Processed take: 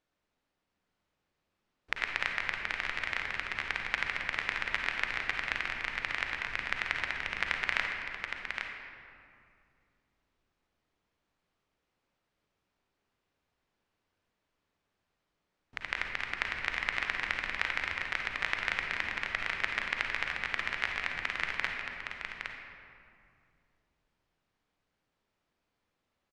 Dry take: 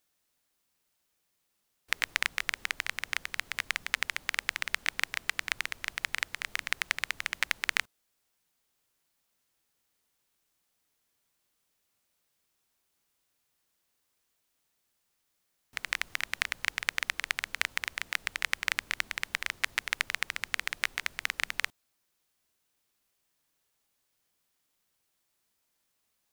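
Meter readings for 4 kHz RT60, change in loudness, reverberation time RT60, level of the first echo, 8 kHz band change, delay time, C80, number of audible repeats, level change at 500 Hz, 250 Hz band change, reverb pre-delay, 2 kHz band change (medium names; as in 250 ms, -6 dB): 1.3 s, -1.0 dB, 2.4 s, -6.0 dB, -13.5 dB, 814 ms, 1.5 dB, 1, +4.5 dB, +6.0 dB, 38 ms, 0.0 dB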